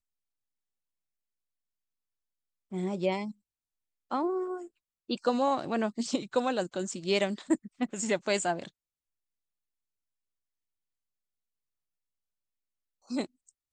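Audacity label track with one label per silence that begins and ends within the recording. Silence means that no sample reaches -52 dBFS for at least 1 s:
8.690000	13.070000	silence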